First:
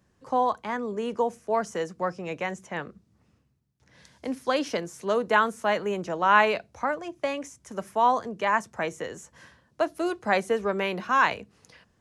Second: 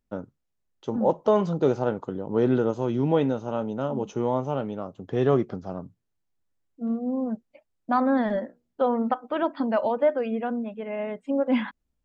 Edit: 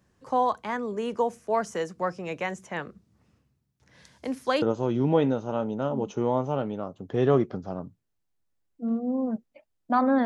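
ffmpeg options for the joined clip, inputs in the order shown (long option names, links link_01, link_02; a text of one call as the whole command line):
ffmpeg -i cue0.wav -i cue1.wav -filter_complex "[0:a]apad=whole_dur=10.25,atrim=end=10.25,atrim=end=4.622[link_01];[1:a]atrim=start=2.608:end=8.24[link_02];[link_01][link_02]acrossfade=duration=0.004:curve1=hsin:curve2=hsin" out.wav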